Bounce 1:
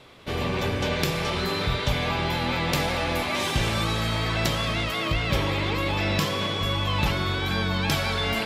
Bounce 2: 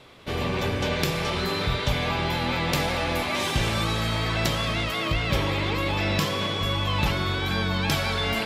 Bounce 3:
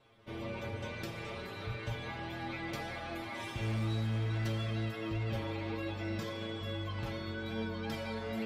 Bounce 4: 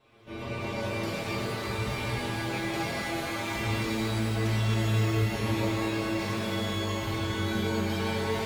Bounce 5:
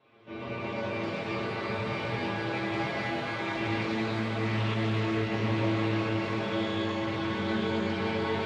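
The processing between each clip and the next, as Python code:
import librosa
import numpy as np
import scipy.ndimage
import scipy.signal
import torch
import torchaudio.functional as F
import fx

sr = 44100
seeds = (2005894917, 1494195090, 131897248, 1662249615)

y1 = x
y2 = fx.high_shelf(y1, sr, hz=2100.0, db=-9.5)
y2 = fx.stiff_resonator(y2, sr, f0_hz=110.0, decay_s=0.25, stiffness=0.002)
y2 = np.clip(y2, -10.0 ** (-26.5 / 20.0), 10.0 ** (-26.5 / 20.0))
y2 = y2 * librosa.db_to_amplitude(-2.5)
y3 = fx.rev_shimmer(y2, sr, seeds[0], rt60_s=3.0, semitones=12, shimmer_db=-8, drr_db=-7.5)
y4 = fx.bandpass_edges(y3, sr, low_hz=130.0, high_hz=3400.0)
y4 = y4 + 10.0 ** (-5.5 / 20.0) * np.pad(y4, (int(919 * sr / 1000.0), 0))[:len(y4)]
y4 = fx.doppler_dist(y4, sr, depth_ms=0.17)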